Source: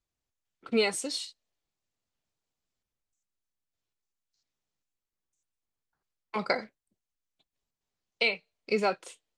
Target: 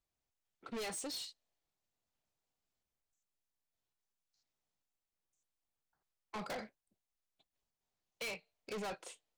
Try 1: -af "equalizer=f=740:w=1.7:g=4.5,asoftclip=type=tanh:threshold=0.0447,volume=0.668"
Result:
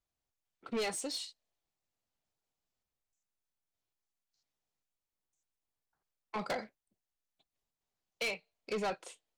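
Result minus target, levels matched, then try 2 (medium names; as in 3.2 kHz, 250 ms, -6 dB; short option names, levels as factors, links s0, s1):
saturation: distortion -5 dB
-af "equalizer=f=740:w=1.7:g=4.5,asoftclip=type=tanh:threshold=0.0168,volume=0.668"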